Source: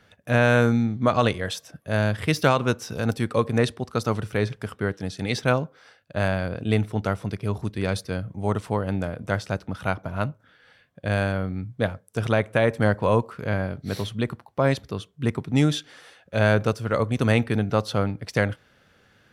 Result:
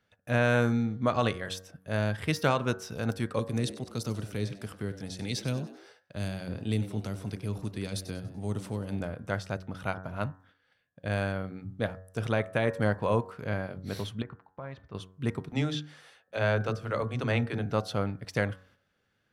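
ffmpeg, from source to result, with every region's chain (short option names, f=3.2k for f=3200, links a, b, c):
-filter_complex "[0:a]asettb=1/sr,asplit=3[a][b][c];[a]atrim=end=3.394[d];[b]atrim=start=3.39:end=9,asetpts=PTS-STARTPTS,afade=t=in:d=0.004:c=qsin,afade=t=out:st=5.606:d=0.004:c=qsin,highshelf=f=4.1k:g=5.5,acrossover=split=390|3000[e][f][g];[f]acompressor=threshold=-37dB:ratio=6:attack=3.2:release=140:knee=2.83:detection=peak[h];[e][h][g]amix=inputs=3:normalize=0,asplit=5[i][j][k][l][m];[j]adelay=96,afreqshift=89,volume=-15.5dB[n];[k]adelay=192,afreqshift=178,volume=-22.1dB[o];[l]adelay=288,afreqshift=267,volume=-28.6dB[p];[m]adelay=384,afreqshift=356,volume=-35.2dB[q];[i][n][o][p][q]amix=inputs=5:normalize=0,atrim=end_sample=247401[r];[c]atrim=start=8.996[s];[d][r]acrossfade=d=0.004:c1=hsin:c2=qsin[t];[t][s]acrossfade=d=0.004:c1=qsin:c2=hsin,asettb=1/sr,asplit=3[u][v][w];[u]atrim=end=14.224[x];[v]atrim=start=14.22:end=14.95,asetpts=PTS-STARTPTS,afade=t=in:d=0.004:c=qsin,afade=t=out:st=0.726:d=0.004:c=qsin,equalizer=f=310:w=0.59:g=-9,acompressor=threshold=-31dB:ratio=4:attack=3.2:release=140:knee=1:detection=peak,lowpass=1.8k[y];[w]atrim=start=14.946[z];[x][y]acrossfade=d=0.004:c1=hsin:c2=qsin[aa];[aa][z]acrossfade=d=0.004:c1=qsin:c2=hsin,asettb=1/sr,asplit=3[ab][ac][ad];[ab]atrim=end=15.494[ae];[ac]atrim=start=15.49:end=17.66,asetpts=PTS-STARTPTS,afade=t=in:d=0.004:c=qsin,afade=t=out:st=2.166:d=0.004:c=qsin,acrossover=split=5900[af][ag];[ag]acompressor=threshold=-56dB:ratio=4:attack=1:release=60[ah];[af][ah]amix=inputs=2:normalize=0,bandreject=f=50:t=h:w=6,bandreject=f=100:t=h:w=6,bandreject=f=150:t=h:w=6,bandreject=f=200:t=h:w=6,bandreject=f=250:t=h:w=6,bandreject=f=300:t=h:w=6,bandreject=f=350:t=h:w=6,bandreject=f=400:t=h:w=6,bandreject=f=450:t=h:w=6,bandreject=f=500:t=h:w=6,acrossover=split=270[ai][aj];[ai]adelay=30[ak];[ak][aj]amix=inputs=2:normalize=0,atrim=end_sample=95697[al];[ad]atrim=start=17.656[am];[ae][al]acrossfade=d=0.004:c1=hsin:c2=qsin[an];[an][am]acrossfade=d=0.004:c1=qsin:c2=hsin,agate=range=-10dB:threshold=-53dB:ratio=16:detection=peak,bandreject=f=93.56:t=h:w=4,bandreject=f=187.12:t=h:w=4,bandreject=f=280.68:t=h:w=4,bandreject=f=374.24:t=h:w=4,bandreject=f=467.8:t=h:w=4,bandreject=f=561.36:t=h:w=4,bandreject=f=654.92:t=h:w=4,bandreject=f=748.48:t=h:w=4,bandreject=f=842.04:t=h:w=4,bandreject=f=935.6:t=h:w=4,bandreject=f=1.02916k:t=h:w=4,bandreject=f=1.12272k:t=h:w=4,bandreject=f=1.21628k:t=h:w=4,bandreject=f=1.30984k:t=h:w=4,bandreject=f=1.4034k:t=h:w=4,bandreject=f=1.49696k:t=h:w=4,bandreject=f=1.59052k:t=h:w=4,bandreject=f=1.68408k:t=h:w=4,bandreject=f=1.77764k:t=h:w=4,bandreject=f=1.8712k:t=h:w=4,volume=-6dB"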